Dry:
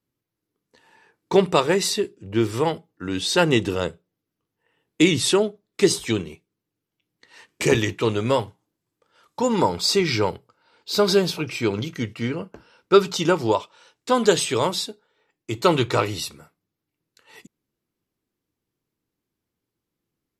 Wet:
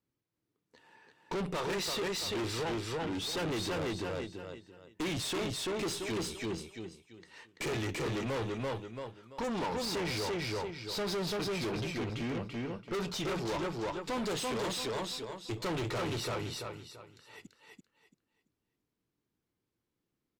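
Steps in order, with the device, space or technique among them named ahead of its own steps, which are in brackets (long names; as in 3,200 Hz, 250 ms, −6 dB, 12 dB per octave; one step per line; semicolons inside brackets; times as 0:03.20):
0:01.68–0:02.62: parametric band 3,600 Hz +8.5 dB 2.6 octaves
repeating echo 337 ms, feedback 26%, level −4 dB
tube preamp driven hard (tube saturation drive 29 dB, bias 0.4; high-shelf EQ 7,000 Hz −7.5 dB)
level −3 dB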